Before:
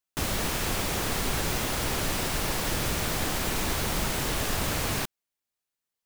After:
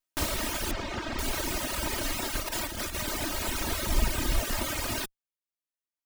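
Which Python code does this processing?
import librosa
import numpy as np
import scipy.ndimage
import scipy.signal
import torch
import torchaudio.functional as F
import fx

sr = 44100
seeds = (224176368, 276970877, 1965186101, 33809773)

y = fx.lower_of_two(x, sr, delay_ms=3.2)
y = fx.dereverb_blind(y, sr, rt60_s=1.3)
y = fx.air_absorb(y, sr, metres=150.0, at=(0.71, 1.19))
y = fx.over_compress(y, sr, threshold_db=-35.0, ratio=-0.5, at=(2.42, 3.08))
y = fx.low_shelf(y, sr, hz=150.0, db=10.5, at=(3.88, 4.41))
y = y * librosa.db_to_amplitude(2.0)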